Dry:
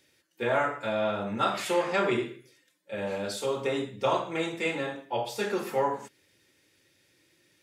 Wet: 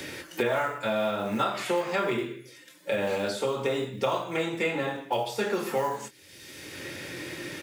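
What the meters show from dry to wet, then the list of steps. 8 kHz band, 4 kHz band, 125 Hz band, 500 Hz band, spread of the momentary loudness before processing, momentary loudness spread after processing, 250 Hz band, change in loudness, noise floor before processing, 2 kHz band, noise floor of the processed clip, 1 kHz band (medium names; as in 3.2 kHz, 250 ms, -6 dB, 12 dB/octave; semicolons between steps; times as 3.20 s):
+1.5 dB, +1.5 dB, +1.5 dB, +1.0 dB, 7 LU, 14 LU, +1.5 dB, 0.0 dB, -69 dBFS, +1.5 dB, -52 dBFS, 0.0 dB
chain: short-mantissa float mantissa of 4-bit; doubling 23 ms -9 dB; three bands compressed up and down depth 100%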